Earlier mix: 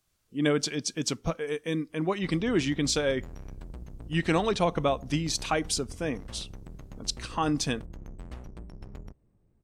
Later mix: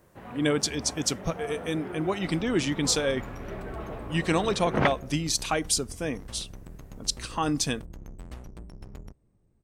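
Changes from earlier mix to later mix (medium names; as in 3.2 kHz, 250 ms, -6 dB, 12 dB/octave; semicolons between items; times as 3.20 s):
first sound: unmuted; master: add treble shelf 7.8 kHz +11 dB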